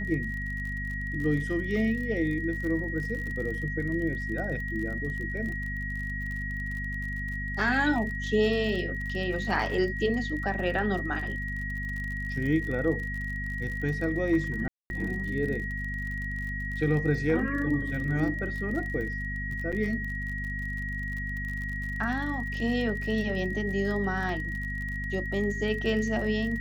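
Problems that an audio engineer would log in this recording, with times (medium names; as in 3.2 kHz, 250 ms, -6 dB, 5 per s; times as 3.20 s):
crackle 41 per s -35 dBFS
hum 50 Hz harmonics 5 -35 dBFS
whine 1.9 kHz -34 dBFS
14.68–14.90 s: dropout 221 ms
19.72–19.73 s: dropout 6.5 ms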